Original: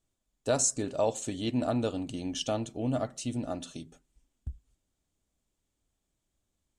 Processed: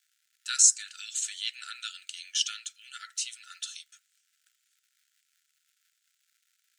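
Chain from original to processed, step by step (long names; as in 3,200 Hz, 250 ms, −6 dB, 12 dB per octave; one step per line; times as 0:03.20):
parametric band 5,100 Hz +7 dB 2.2 octaves
surface crackle 270 per second −58 dBFS
linear-phase brick-wall high-pass 1,300 Hz
level +2.5 dB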